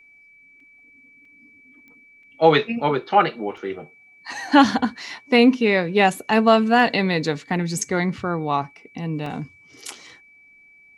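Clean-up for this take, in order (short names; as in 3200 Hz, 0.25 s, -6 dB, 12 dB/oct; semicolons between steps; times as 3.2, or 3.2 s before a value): de-click; notch 2300 Hz, Q 30; interpolate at 0.6/1.25/2.23/3.57/9.26, 3.2 ms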